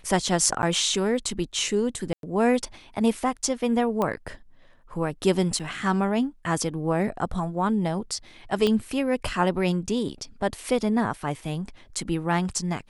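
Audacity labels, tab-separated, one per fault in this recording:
0.620000	0.630000	dropout 9.9 ms
2.130000	2.230000	dropout 102 ms
4.020000	4.020000	pop -14 dBFS
5.590000	5.600000	dropout 6.6 ms
8.670000	8.670000	pop -12 dBFS

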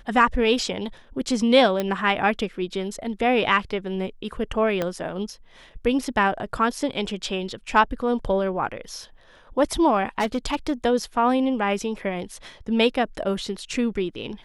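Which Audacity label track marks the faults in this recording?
1.800000	1.800000	pop -11 dBFS
4.820000	4.820000	pop -12 dBFS
10.200000	10.730000	clipped -18 dBFS

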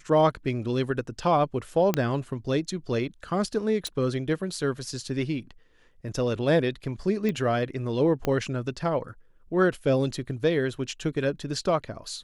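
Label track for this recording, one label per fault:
1.940000	1.940000	pop -9 dBFS
3.870000	3.870000	pop -17 dBFS
7.290000	7.290000	pop -17 dBFS
8.250000	8.250000	pop -13 dBFS

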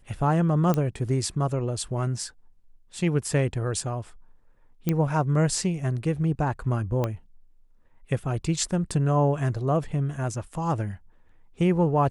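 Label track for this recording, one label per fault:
0.740000	0.740000	pop -13 dBFS
4.890000	4.890000	pop -11 dBFS
7.040000	7.040000	pop -14 dBFS

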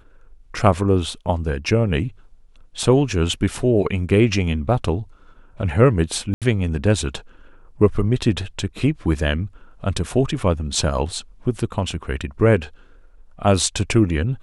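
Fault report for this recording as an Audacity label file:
6.340000	6.420000	dropout 77 ms

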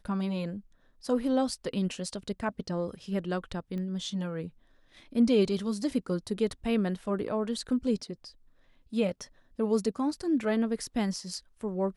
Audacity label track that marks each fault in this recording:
3.780000	3.780000	pop -28 dBFS

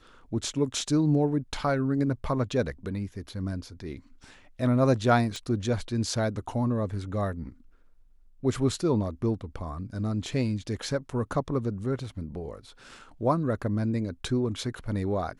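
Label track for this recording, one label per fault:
5.360000	5.360000	pop -22 dBFS

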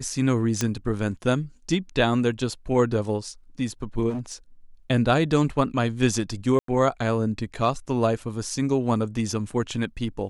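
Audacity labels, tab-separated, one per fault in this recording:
0.610000	0.610000	pop -9 dBFS
4.090000	4.340000	clipped -26 dBFS
6.590000	6.680000	dropout 93 ms

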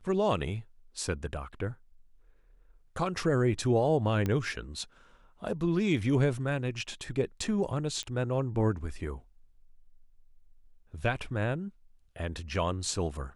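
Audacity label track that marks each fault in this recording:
4.260000	4.260000	pop -18 dBFS
8.030000	8.030000	pop -23 dBFS

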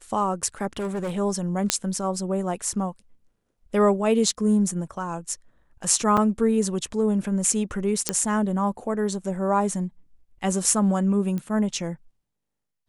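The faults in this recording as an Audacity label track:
0.770000	1.180000	clipped -24.5 dBFS
1.700000	1.700000	pop -2 dBFS
6.170000	6.170000	dropout 5 ms
8.090000	8.090000	pop -4 dBFS
11.380000	11.380000	pop -19 dBFS

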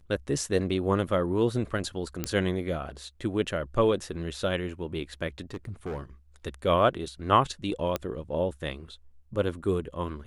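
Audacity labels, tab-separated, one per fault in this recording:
2.240000	2.240000	pop -12 dBFS
5.500000	6.020000	clipped -30 dBFS
7.960000	7.960000	pop -14 dBFS

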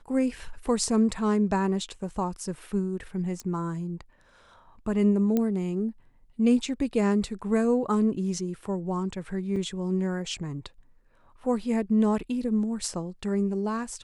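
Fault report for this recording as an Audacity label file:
3.400000	3.400000	pop -22 dBFS
5.370000	5.370000	pop -14 dBFS
9.560000	9.560000	dropout 3.3 ms

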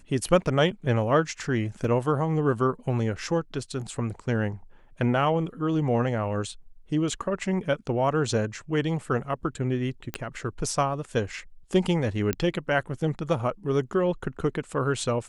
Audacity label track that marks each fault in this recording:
1.840000	1.840000	dropout 3 ms
10.140000	10.140000	pop -14 dBFS
12.330000	12.330000	pop -11 dBFS

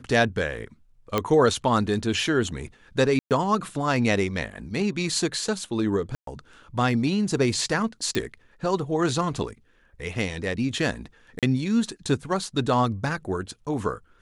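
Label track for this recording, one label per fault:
1.180000	1.180000	pop -9 dBFS
3.190000	3.310000	dropout 118 ms
6.150000	6.270000	dropout 123 ms
8.150000	8.150000	pop
11.390000	11.430000	dropout 37 ms

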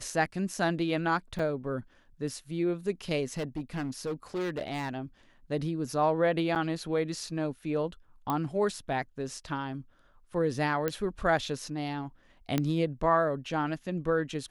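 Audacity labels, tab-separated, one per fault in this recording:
1.390000	1.390000	dropout 4 ms
3.250000	4.960000	clipped -29 dBFS
6.550000	6.560000	dropout 7.3 ms
8.300000	8.300000	pop -17 dBFS
10.880000	10.880000	pop -15 dBFS
12.580000	12.580000	pop -13 dBFS

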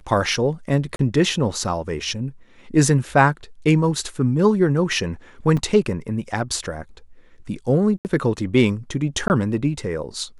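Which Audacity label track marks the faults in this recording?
0.960000	0.990000	dropout 32 ms
5.570000	5.570000	dropout 4.4 ms
7.980000	8.050000	dropout 69 ms
9.280000	9.300000	dropout 19 ms

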